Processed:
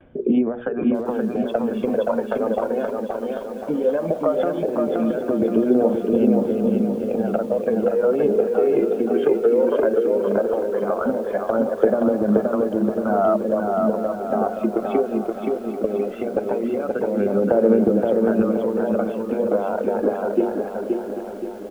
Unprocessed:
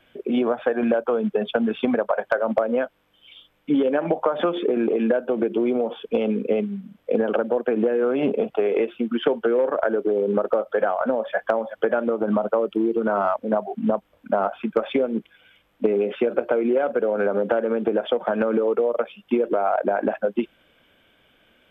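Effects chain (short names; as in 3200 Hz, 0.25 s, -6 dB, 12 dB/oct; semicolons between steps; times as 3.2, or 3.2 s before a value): gate with hold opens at -53 dBFS; tilt shelf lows +7.5 dB; notches 60/120/180/240/300/360/420/480 Hz; compressor 8:1, threshold -18 dBFS, peak gain reduction 9 dB; phaser 0.17 Hz, delay 2.9 ms, feedback 60%; air absorption 210 m; feedback echo 0.524 s, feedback 45%, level -3.5 dB; lo-fi delay 0.791 s, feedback 55%, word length 7-bit, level -12 dB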